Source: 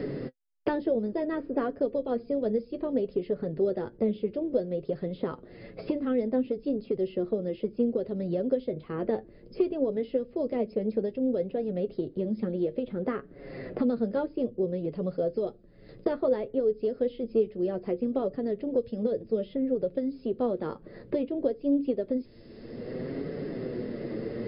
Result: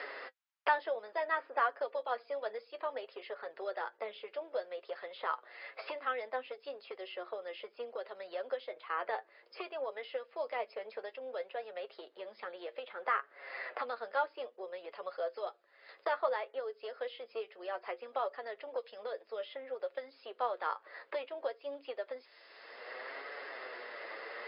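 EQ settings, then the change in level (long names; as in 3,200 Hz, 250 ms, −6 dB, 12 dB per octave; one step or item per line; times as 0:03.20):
high-pass filter 910 Hz 24 dB per octave
high-frequency loss of the air 100 metres
high-shelf EQ 3,500 Hz −7.5 dB
+10.0 dB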